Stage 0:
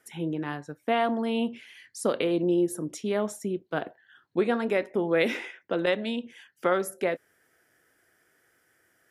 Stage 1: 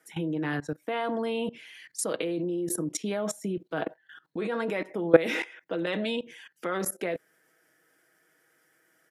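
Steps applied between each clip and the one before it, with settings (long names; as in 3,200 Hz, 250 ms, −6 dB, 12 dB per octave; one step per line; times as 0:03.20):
high-pass filter 140 Hz 24 dB per octave
comb filter 6.3 ms, depth 49%
output level in coarse steps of 19 dB
level +8.5 dB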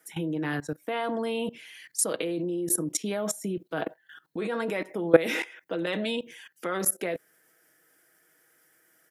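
high-shelf EQ 8,500 Hz +11.5 dB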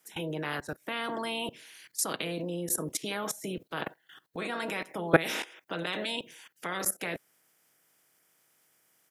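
ceiling on every frequency bin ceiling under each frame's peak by 17 dB
level −4 dB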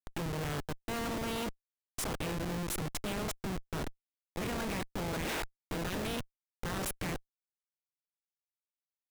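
comparator with hysteresis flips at −34 dBFS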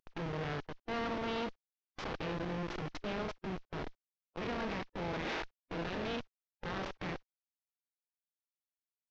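variable-slope delta modulation 32 kbit/s
bass and treble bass −5 dB, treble −4 dB
harmonic and percussive parts rebalanced percussive −7 dB
level +2.5 dB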